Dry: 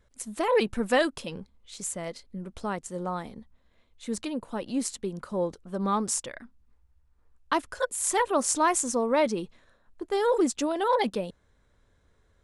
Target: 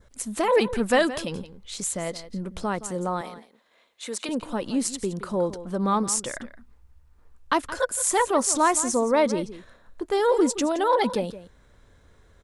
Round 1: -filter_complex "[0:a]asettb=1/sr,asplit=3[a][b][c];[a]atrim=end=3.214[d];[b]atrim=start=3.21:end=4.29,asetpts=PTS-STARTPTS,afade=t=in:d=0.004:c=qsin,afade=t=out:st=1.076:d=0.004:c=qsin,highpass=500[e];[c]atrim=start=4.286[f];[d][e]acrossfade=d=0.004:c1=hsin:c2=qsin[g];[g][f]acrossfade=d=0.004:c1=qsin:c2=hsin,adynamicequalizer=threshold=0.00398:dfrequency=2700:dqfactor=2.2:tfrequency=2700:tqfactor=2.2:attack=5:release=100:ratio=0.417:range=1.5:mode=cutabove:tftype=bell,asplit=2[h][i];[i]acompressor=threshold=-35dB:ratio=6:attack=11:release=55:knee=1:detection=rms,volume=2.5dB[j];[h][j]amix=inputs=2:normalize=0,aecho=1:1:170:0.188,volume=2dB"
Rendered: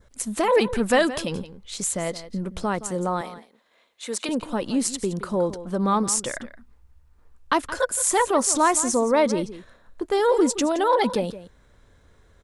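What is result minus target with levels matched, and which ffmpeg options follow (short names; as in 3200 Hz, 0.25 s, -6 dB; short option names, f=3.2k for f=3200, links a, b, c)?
compressor: peak gain reduction -7.5 dB
-filter_complex "[0:a]asettb=1/sr,asplit=3[a][b][c];[a]atrim=end=3.214[d];[b]atrim=start=3.21:end=4.29,asetpts=PTS-STARTPTS,afade=t=in:d=0.004:c=qsin,afade=t=out:st=1.076:d=0.004:c=qsin,highpass=500[e];[c]atrim=start=4.286[f];[d][e]acrossfade=d=0.004:c1=hsin:c2=qsin[g];[g][f]acrossfade=d=0.004:c1=qsin:c2=hsin,adynamicequalizer=threshold=0.00398:dfrequency=2700:dqfactor=2.2:tfrequency=2700:tqfactor=2.2:attack=5:release=100:ratio=0.417:range=1.5:mode=cutabove:tftype=bell,asplit=2[h][i];[i]acompressor=threshold=-44dB:ratio=6:attack=11:release=55:knee=1:detection=rms,volume=2.5dB[j];[h][j]amix=inputs=2:normalize=0,aecho=1:1:170:0.188,volume=2dB"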